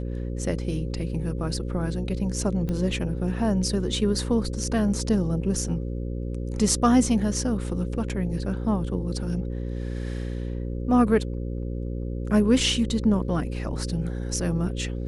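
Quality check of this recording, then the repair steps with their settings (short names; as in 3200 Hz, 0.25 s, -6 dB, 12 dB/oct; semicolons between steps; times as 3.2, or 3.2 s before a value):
buzz 60 Hz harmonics 9 -30 dBFS
2.69 pop -18 dBFS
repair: de-click; de-hum 60 Hz, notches 9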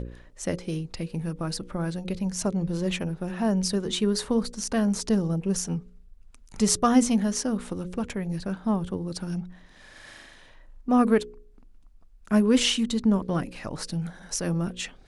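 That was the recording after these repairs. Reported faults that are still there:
none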